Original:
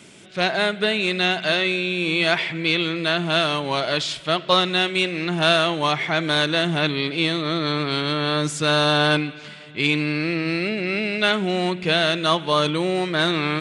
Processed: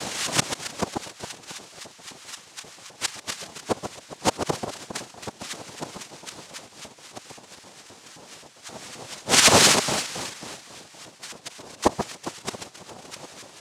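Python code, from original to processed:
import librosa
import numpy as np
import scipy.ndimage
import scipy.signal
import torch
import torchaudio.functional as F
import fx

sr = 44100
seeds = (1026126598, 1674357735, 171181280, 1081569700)

p1 = fx.reverse_delay_fb(x, sr, ms=267, feedback_pct=44, wet_db=-13)
p2 = fx.high_shelf(p1, sr, hz=2700.0, db=9.5)
p3 = fx.gate_flip(p2, sr, shuts_db=-13.0, range_db=-36)
p4 = fx.quant_companded(p3, sr, bits=2)
p5 = p3 + (p4 * 10.0 ** (-9.0 / 20.0))
p6 = fx.filter_lfo_highpass(p5, sr, shape='saw_up', hz=3.8, low_hz=340.0, high_hz=3100.0, q=7.6)
p7 = p6 + fx.echo_alternate(p6, sr, ms=136, hz=1200.0, feedback_pct=67, wet_db=-6.5, dry=0)
p8 = fx.noise_vocoder(p7, sr, seeds[0], bands=2)
y = p8 * 10.0 ** (5.0 / 20.0)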